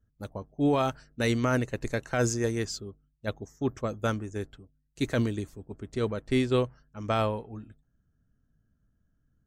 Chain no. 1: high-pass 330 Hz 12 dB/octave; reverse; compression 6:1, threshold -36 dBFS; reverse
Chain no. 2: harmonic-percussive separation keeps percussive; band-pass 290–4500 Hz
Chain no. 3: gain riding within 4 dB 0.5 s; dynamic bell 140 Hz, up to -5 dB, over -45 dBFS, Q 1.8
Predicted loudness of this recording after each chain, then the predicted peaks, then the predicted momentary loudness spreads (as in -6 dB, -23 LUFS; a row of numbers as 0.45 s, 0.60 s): -42.0 LUFS, -37.5 LUFS, -31.5 LUFS; -23.5 dBFS, -14.5 dBFS, -13.5 dBFS; 9 LU, 13 LU, 11 LU